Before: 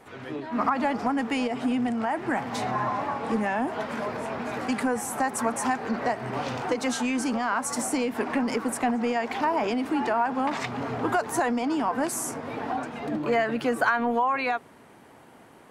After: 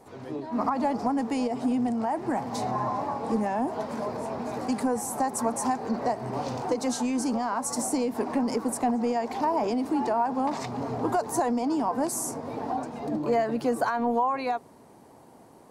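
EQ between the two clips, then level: band shelf 2100 Hz -10 dB; 0.0 dB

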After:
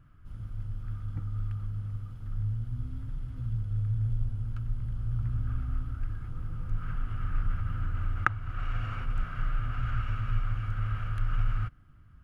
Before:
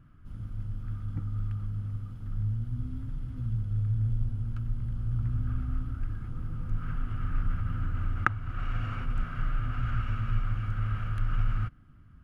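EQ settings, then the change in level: bell 230 Hz -6.5 dB 1.1 oct; 0.0 dB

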